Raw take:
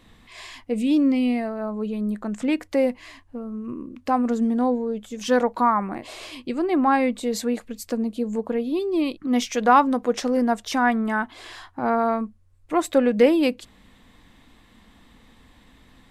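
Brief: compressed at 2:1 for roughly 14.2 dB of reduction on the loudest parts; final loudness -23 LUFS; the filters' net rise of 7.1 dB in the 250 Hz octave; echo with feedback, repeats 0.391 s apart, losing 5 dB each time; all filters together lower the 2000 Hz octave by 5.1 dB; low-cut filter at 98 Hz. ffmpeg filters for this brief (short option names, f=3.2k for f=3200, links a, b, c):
-af "highpass=98,equalizer=f=250:t=o:g=8,equalizer=f=2k:t=o:g=-7.5,acompressor=threshold=-37dB:ratio=2,aecho=1:1:391|782|1173|1564|1955|2346|2737:0.562|0.315|0.176|0.0988|0.0553|0.031|0.0173,volume=7dB"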